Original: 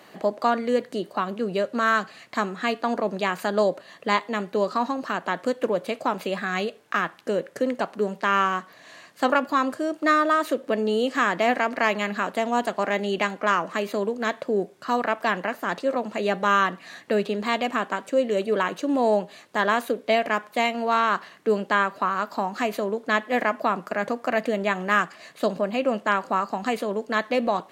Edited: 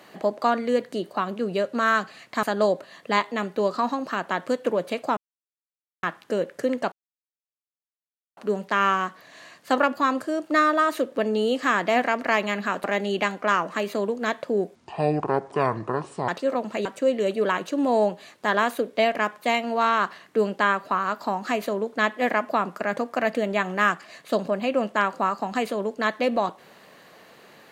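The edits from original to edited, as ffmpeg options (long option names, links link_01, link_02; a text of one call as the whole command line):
ffmpeg -i in.wav -filter_complex "[0:a]asplit=9[link_01][link_02][link_03][link_04][link_05][link_06][link_07][link_08][link_09];[link_01]atrim=end=2.432[link_10];[link_02]atrim=start=3.398:end=6.14,asetpts=PTS-STARTPTS,afade=type=out:start_time=2.738:duration=0.004:curve=hsin[link_11];[link_03]atrim=start=6.14:end=7,asetpts=PTS-STARTPTS,volume=0[link_12];[link_04]atrim=start=7:end=7.89,asetpts=PTS-STARTPTS,afade=type=in:duration=0.004:curve=hsin,afade=type=out:start_time=0.886:duration=0.004:curve=hsin,apad=pad_dur=1.45[link_13];[link_05]atrim=start=7.89:end=12.362,asetpts=PTS-STARTPTS,afade=type=in:duration=0.004:curve=hsin[link_14];[link_06]atrim=start=12.828:end=14.744[link_15];[link_07]atrim=start=14.74:end=15.69,asetpts=PTS-STARTPTS,asetrate=27342,aresample=44100[link_16];[link_08]atrim=start=15.686:end=16.262[link_17];[link_09]atrim=start=17.958[link_18];[link_11][link_12][link_13][link_14]concat=n=4:v=0:a=1[link_19];[link_10][link_19]acrossfade=duration=0.004:curve1=hsin:curve2=hsin[link_20];[link_20][link_15]acrossfade=duration=0.004:curve1=hsin:curve2=hsin[link_21];[link_21][link_16]acrossfade=duration=0.004:curve1=hsin:curve2=hsin[link_22];[link_22][link_17]acrossfade=duration=0.004:curve1=hsin:curve2=hsin[link_23];[link_23][link_18]acrossfade=duration=0.004:curve1=hsin:curve2=hsin" out.wav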